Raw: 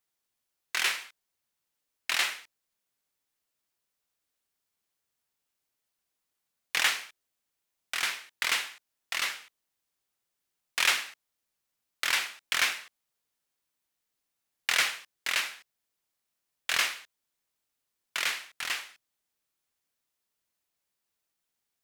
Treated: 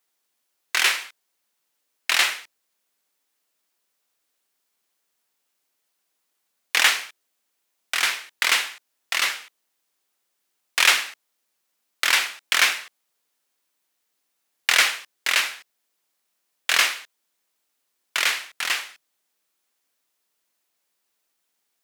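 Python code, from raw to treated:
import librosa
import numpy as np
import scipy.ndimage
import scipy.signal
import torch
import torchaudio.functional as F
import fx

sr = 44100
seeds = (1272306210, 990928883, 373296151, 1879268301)

y = scipy.signal.sosfilt(scipy.signal.butter(2, 230.0, 'highpass', fs=sr, output='sos'), x)
y = F.gain(torch.from_numpy(y), 8.0).numpy()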